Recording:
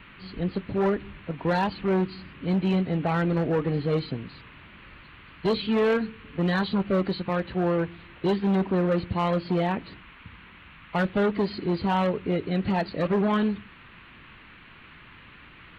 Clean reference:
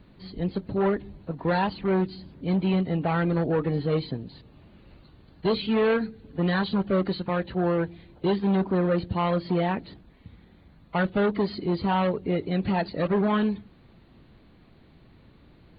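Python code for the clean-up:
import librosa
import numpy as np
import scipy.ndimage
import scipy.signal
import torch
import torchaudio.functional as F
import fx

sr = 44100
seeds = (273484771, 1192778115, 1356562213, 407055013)

y = fx.fix_declip(x, sr, threshold_db=-18.0)
y = fx.noise_reduce(y, sr, print_start_s=14.37, print_end_s=14.87, reduce_db=6.0)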